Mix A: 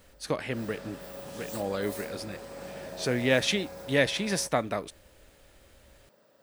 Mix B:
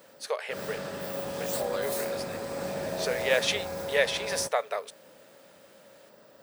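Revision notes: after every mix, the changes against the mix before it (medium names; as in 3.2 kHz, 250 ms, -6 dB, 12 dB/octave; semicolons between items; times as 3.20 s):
speech: add brick-wall FIR high-pass 400 Hz; background +8.0 dB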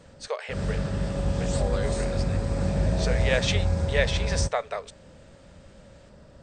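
background: remove high-pass 360 Hz 12 dB/octave; master: add brick-wall FIR low-pass 9 kHz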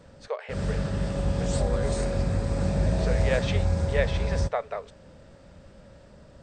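speech: add low-pass 1.4 kHz 6 dB/octave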